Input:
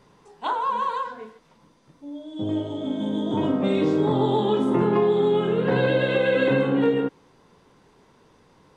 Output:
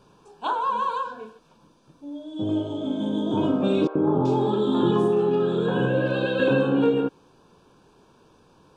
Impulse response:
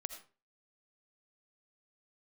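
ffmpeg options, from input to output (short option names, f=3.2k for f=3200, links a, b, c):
-filter_complex "[0:a]asuperstop=centerf=2000:order=8:qfactor=4.1,equalizer=f=340:w=7.1:g=3,asettb=1/sr,asplit=3[a][b][c];[a]atrim=end=3.874[d];[b]atrim=start=3.87:end=6.4,asetpts=PTS-STARTPTS,afade=t=in:d=0.004:c=qsin,afade=t=out:st=2.526:d=0.004:c=qsin,acrossover=split=590|2000[e][f][g];[e]adelay=80[h];[g]adelay=380[i];[h][f][i]amix=inputs=3:normalize=0,atrim=end_sample=111573[j];[c]atrim=start=6.396[k];[d][j]acrossfade=d=0.004:c1=hsin:c2=qsin[l];[l][k]acrossfade=d=0.004:c1=qsin:c2=hsin"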